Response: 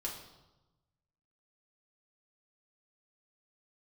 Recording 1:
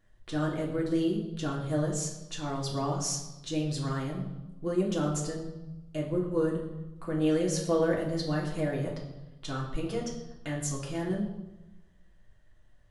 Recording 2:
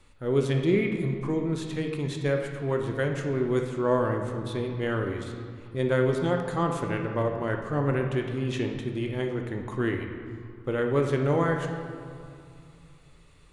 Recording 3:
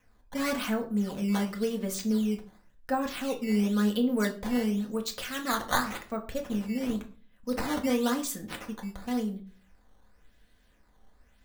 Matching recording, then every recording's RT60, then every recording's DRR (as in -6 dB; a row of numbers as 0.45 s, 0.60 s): 1; 1.0 s, 2.5 s, 0.40 s; -3.0 dB, 3.0 dB, 2.0 dB